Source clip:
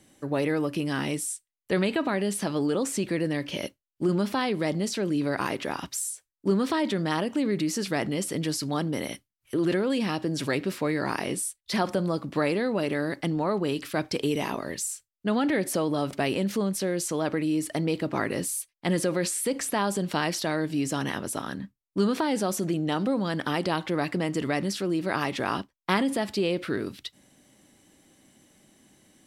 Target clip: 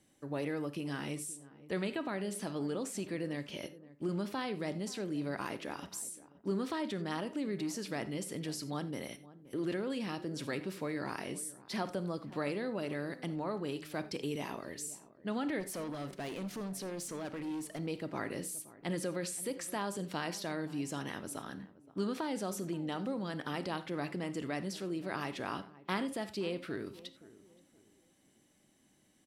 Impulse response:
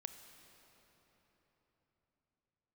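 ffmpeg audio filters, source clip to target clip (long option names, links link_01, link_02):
-filter_complex "[0:a]asettb=1/sr,asplit=3[link_01][link_02][link_03];[link_01]atrim=end=15.604[link_04];[link_02]atrim=start=15.6:end=17.79,asetpts=PTS-STARTPTS,afade=type=in:duration=0.004:curve=qsin,afade=type=out:start_time=2.186:duration=0.004:curve=qsin,asoftclip=type=hard:threshold=-26.5dB[link_05];[link_03]atrim=start=17.786[link_06];[link_04][link_05]acrossfade=duration=0.004:curve1=hsin:curve2=qsin[link_07];[link_07][link_06]acrossfade=duration=0.004:curve1=qsin:curve2=hsin,asplit=2[link_08][link_09];[link_09]adelay=523,lowpass=frequency=990:poles=1,volume=-17dB,asplit=2[link_10][link_11];[link_11]adelay=523,lowpass=frequency=990:poles=1,volume=0.35,asplit=2[link_12][link_13];[link_13]adelay=523,lowpass=frequency=990:poles=1,volume=0.35[link_14];[link_08][link_10][link_12][link_14]amix=inputs=4:normalize=0[link_15];[1:a]atrim=start_sample=2205,atrim=end_sample=4410[link_16];[link_15][link_16]afir=irnorm=-1:irlink=0,volume=-6dB"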